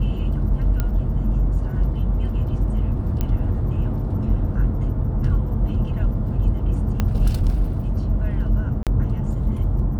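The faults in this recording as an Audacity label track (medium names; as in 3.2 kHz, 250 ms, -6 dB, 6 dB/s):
0.800000	0.800000	pop -10 dBFS
3.210000	3.210000	pop -11 dBFS
7.000000	7.000000	pop -8 dBFS
8.830000	8.870000	dropout 37 ms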